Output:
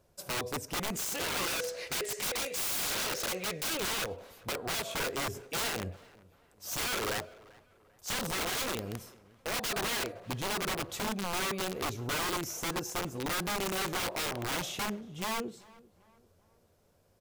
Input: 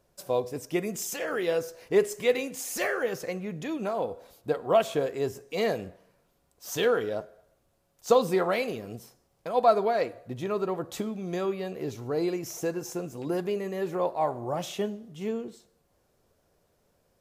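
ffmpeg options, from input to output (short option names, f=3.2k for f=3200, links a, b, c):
-filter_complex "[0:a]asettb=1/sr,asplit=3[a][b][c];[a]atrim=end=1.504[d];[b]atrim=start=1.5:end=4.04,asetpts=PTS-STARTPTS,afade=t=in:d=0.004:c=qsin,afade=t=out:st=2.536:d=0.004:c=qsin,equalizer=f=125:t=o:w=1:g=-6,equalizer=f=250:t=o:w=1:g=-11,equalizer=f=500:t=o:w=1:g=12,equalizer=f=1k:t=o:w=1:g=-3,equalizer=f=2k:t=o:w=1:g=11,equalizer=f=4k:t=o:w=1:g=11,equalizer=f=8k:t=o:w=1:g=7[e];[c]atrim=start=4.036[f];[d][e]acrossfade=d=0.004:c1=hsin:c2=qsin[g];[g][f]acrossfade=d=0.004:c1=qsin:c2=hsin,acompressor=threshold=-24dB:ratio=5,equalizer=f=91:w=4.5:g=9.5,aeval=exprs='(mod(25.1*val(0)+1,2)-1)/25.1':c=same,bandreject=f=1.8k:w=27,asplit=2[h][i];[i]adelay=391,lowpass=f=2.4k:p=1,volume=-22dB,asplit=2[j][k];[k]adelay=391,lowpass=f=2.4k:p=1,volume=0.43,asplit=2[l][m];[m]adelay=391,lowpass=f=2.4k:p=1,volume=0.43[n];[h][j][l][n]amix=inputs=4:normalize=0"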